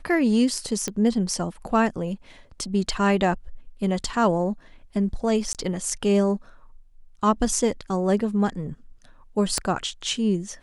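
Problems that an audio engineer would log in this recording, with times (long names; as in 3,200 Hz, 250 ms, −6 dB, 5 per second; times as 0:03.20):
0:00.88: click −13 dBFS
0:05.53–0:05.55: drop-out 18 ms
0:09.58: click −9 dBFS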